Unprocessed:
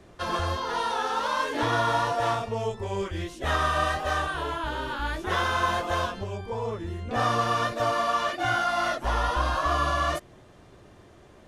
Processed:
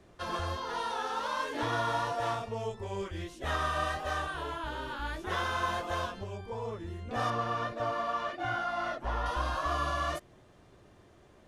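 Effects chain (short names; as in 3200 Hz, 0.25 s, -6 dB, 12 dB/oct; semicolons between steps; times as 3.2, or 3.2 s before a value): 7.3–9.26 LPF 2200 Hz 6 dB/oct; gain -6.5 dB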